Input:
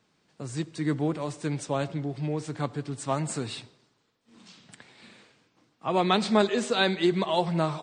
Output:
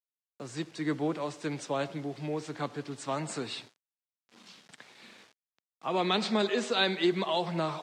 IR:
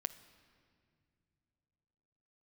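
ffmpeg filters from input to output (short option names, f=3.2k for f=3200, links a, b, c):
-filter_complex "[0:a]lowshelf=f=190:g=-10.5,acrossover=split=330|2300[a][b][c];[b]alimiter=limit=-22.5dB:level=0:latency=1[d];[a][d][c]amix=inputs=3:normalize=0,acrusher=bits=8:mix=0:aa=0.000001,highpass=130,lowpass=6.3k"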